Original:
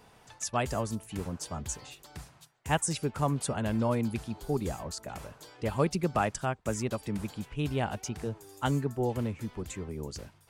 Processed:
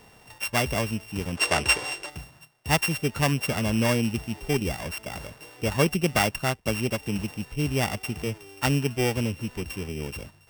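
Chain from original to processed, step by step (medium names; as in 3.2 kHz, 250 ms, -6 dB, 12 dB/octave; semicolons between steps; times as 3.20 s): sorted samples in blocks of 16 samples; time-frequency box 1.38–2.09 s, 290–11000 Hz +12 dB; trim +5 dB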